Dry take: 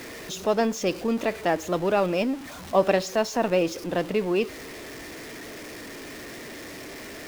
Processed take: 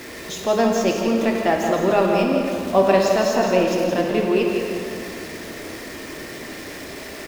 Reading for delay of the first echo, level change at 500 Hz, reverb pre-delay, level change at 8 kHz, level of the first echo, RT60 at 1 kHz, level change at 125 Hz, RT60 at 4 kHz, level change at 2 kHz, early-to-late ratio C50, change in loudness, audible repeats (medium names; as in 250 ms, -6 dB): 168 ms, +6.0 dB, 3 ms, +4.5 dB, -7.0 dB, 2.5 s, +5.5 dB, 1.8 s, +5.5 dB, 1.0 dB, +5.5 dB, 1